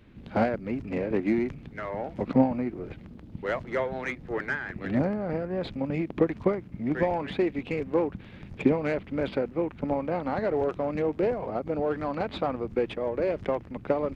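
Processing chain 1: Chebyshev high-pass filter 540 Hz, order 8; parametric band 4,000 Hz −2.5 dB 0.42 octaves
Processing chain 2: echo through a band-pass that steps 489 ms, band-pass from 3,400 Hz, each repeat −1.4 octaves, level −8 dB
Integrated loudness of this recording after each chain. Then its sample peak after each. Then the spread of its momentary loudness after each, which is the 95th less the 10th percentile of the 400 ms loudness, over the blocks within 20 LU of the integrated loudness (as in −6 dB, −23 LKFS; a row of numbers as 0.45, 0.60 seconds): −35.0, −29.0 LKFS; −16.0, −9.0 dBFS; 10, 7 LU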